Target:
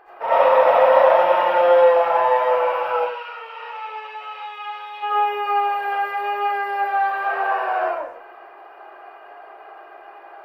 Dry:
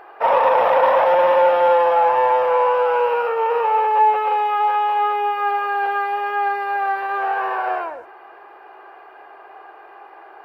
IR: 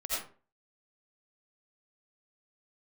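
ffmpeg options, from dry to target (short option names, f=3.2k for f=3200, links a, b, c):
-filter_complex "[0:a]asplit=3[a][b][c];[a]afade=t=out:st=2.96:d=0.02[d];[b]bandpass=f=3.8k:t=q:w=1.1:csg=0,afade=t=in:st=2.96:d=0.02,afade=t=out:st=5.02:d=0.02[e];[c]afade=t=in:st=5.02:d=0.02[f];[d][e][f]amix=inputs=3:normalize=0[g];[1:a]atrim=start_sample=2205[h];[g][h]afir=irnorm=-1:irlink=0,volume=-4dB"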